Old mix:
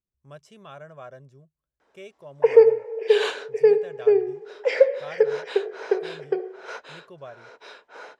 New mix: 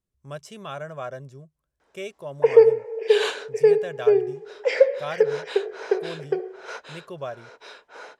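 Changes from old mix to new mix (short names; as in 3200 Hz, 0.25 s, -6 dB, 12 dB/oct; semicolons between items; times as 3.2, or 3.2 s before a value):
speech +8.0 dB; master: add high shelf 6300 Hz +7 dB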